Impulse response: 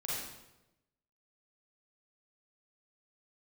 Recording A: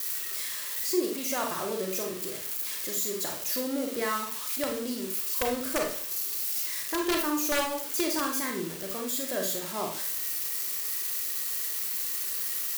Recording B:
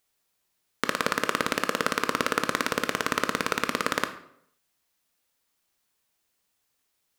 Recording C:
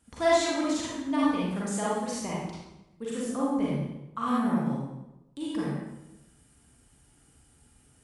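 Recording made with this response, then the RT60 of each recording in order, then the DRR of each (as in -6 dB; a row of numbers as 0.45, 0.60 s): C; 0.50, 0.70, 0.95 s; 1.5, 8.5, -7.0 dB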